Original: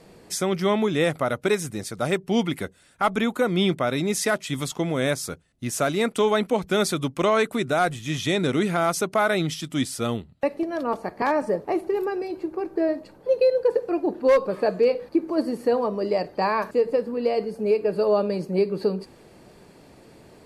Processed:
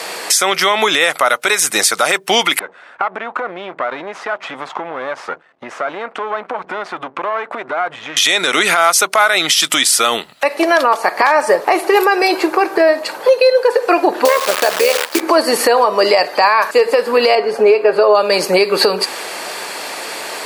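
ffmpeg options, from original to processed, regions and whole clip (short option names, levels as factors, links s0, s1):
-filter_complex "[0:a]asettb=1/sr,asplit=3[s0][s1][s2];[s0]atrim=end=2.594[s3];[s1]atrim=start=2.59:end=8.17,asetpts=PTS-STARTPTS,afade=t=in:d=0.004:c=qsin,afade=t=out:st=5.576:d=0.004:c=qsin,aeval=exprs='if(lt(val(0),0),0.251*val(0),val(0))':c=same,acompressor=threshold=0.0141:ratio=20:attack=3.2:release=140:knee=1:detection=peak,lowpass=1200[s4];[s2]atrim=start=8.166[s5];[s3][s4]acrossfade=d=0.004:c1=hsin:c2=qsin[s6];[s6][s5]acrossfade=d=0.004:c1=qsin:c2=hsin,asettb=1/sr,asplit=3[s7][s8][s9];[s7]atrim=end=14.254[s10];[s8]atrim=start=14.25:end=15.21,asetpts=PTS-STARTPTS,afade=t=in:d=0.004:c=qsin,afade=t=out:st=0.956:d=0.004:c=qsin,tremolo=f=75:d=0.667,acrusher=bits=7:dc=4:mix=0:aa=0.000001[s11];[s9]atrim=start=15.206[s12];[s10][s11]acrossfade=d=0.004:c1=hsin:c2=qsin[s13];[s13][s12]acrossfade=d=0.004:c1=qsin:c2=hsin,asettb=1/sr,asplit=3[s14][s15][s16];[s14]atrim=end=17.354[s17];[s15]atrim=start=17.35:end=18.15,asetpts=PTS-STARTPTS,afade=t=in:d=0.004:c=qsin,afade=t=out:st=0.796:d=0.004:c=qsin,lowpass=f=1300:p=1,aecho=1:1:7.5:0.49,atrim=end_sample=35280[s18];[s16]atrim=start=18.146[s19];[s17][s18]acrossfade=d=0.004:c1=hsin:c2=qsin[s20];[s20][s19]acrossfade=d=0.004:c1=qsin:c2=hsin,highpass=980,acompressor=threshold=0.01:ratio=5,alimiter=level_in=47.3:limit=0.891:release=50:level=0:latency=1,volume=0.891"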